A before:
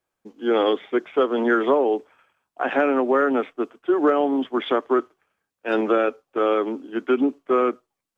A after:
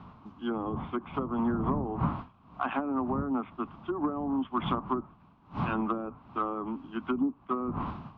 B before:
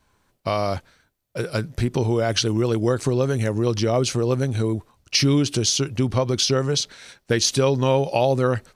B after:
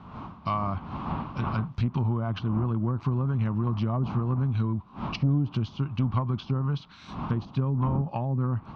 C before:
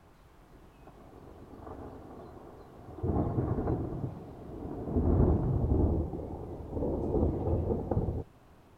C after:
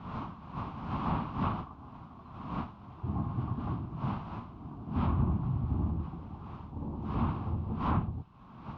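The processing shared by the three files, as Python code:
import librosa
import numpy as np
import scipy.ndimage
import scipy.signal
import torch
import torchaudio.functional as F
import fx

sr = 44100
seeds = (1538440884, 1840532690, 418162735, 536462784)

y = fx.dmg_wind(x, sr, seeds[0], corner_hz=590.0, level_db=-34.0)
y = fx.highpass(y, sr, hz=100.0, slope=6)
y = fx.env_lowpass_down(y, sr, base_hz=520.0, full_db=-15.0)
y = fx.curve_eq(y, sr, hz=(210.0, 490.0, 1100.0, 1800.0, 2700.0), db=(0, -21, 4, -13, -1))
y = 10.0 ** (-15.5 / 20.0) * np.tanh(y / 10.0 ** (-15.5 / 20.0))
y = fx.air_absorb(y, sr, metres=210.0)
y = y * librosa.db_to_amplitude(1.0)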